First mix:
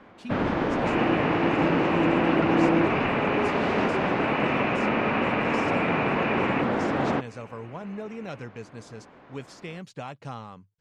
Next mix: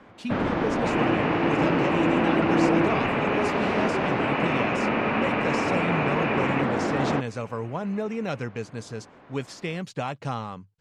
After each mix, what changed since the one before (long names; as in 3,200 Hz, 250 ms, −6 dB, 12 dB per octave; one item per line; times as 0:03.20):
speech +7.0 dB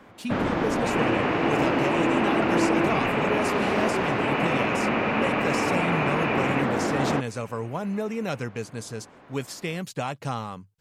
second sound: add Butterworth high-pass 320 Hz 48 dB per octave
master: remove high-frequency loss of the air 74 metres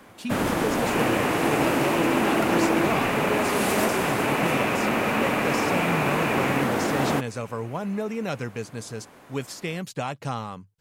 first sound: remove high-frequency loss of the air 210 metres